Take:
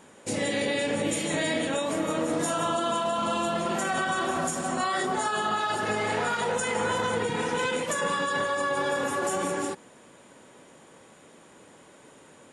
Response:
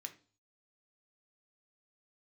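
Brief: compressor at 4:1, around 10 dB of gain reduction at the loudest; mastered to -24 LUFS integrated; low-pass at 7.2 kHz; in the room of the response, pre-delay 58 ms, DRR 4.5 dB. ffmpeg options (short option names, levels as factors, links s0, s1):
-filter_complex "[0:a]lowpass=7200,acompressor=threshold=0.0158:ratio=4,asplit=2[s0][s1];[1:a]atrim=start_sample=2205,adelay=58[s2];[s1][s2]afir=irnorm=-1:irlink=0,volume=0.944[s3];[s0][s3]amix=inputs=2:normalize=0,volume=3.98"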